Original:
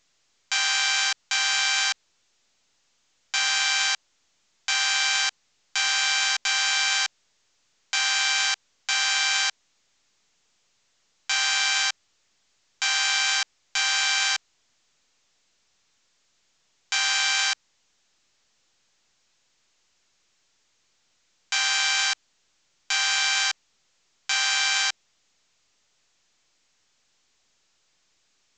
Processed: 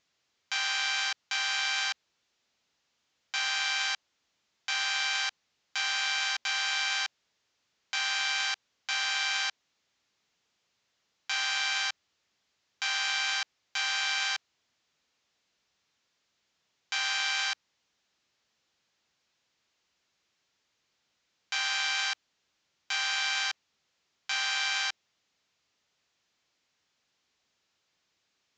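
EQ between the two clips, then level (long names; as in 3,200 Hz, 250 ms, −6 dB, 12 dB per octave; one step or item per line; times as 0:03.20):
high-pass filter 58 Hz
high-frequency loss of the air 170 metres
high-shelf EQ 6,300 Hz +12 dB
−5.0 dB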